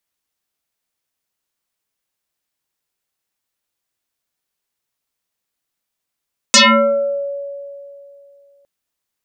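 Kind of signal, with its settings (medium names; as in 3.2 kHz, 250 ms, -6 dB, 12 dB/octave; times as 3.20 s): FM tone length 2.11 s, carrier 563 Hz, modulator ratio 1.4, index 10, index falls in 0.72 s exponential, decay 2.72 s, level -4.5 dB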